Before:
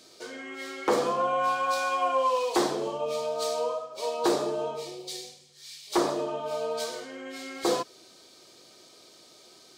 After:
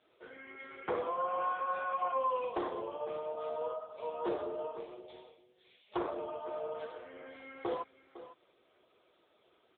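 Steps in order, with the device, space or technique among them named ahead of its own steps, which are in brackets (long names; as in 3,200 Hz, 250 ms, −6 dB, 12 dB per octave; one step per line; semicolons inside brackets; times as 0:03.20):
satellite phone (band-pass filter 360–3,000 Hz; single-tap delay 505 ms −14.5 dB; level −6.5 dB; AMR narrowband 6.7 kbit/s 8,000 Hz)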